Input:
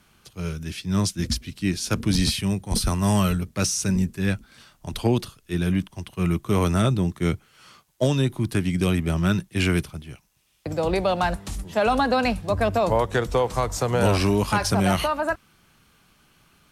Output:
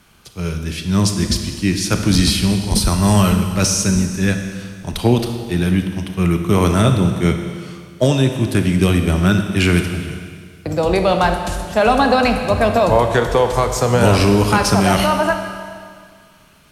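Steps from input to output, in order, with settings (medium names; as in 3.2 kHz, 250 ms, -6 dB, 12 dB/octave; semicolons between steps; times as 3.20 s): Schroeder reverb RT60 2 s, combs from 26 ms, DRR 5.5 dB; trim +6.5 dB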